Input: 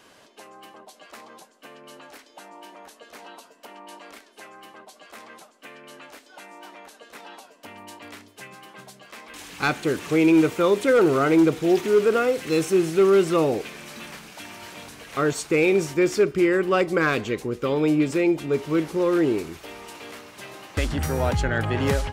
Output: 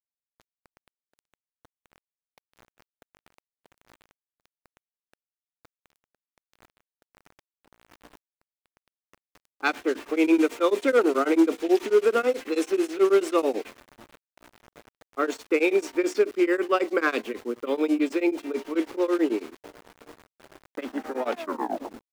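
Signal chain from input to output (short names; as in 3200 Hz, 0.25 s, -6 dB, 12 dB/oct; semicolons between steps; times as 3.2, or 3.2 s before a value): tape stop at the end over 0.89 s; steep high-pass 230 Hz 72 dB/oct; low-pass opened by the level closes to 510 Hz, open at -16.5 dBFS; sample gate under -40.5 dBFS; beating tremolo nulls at 9.2 Hz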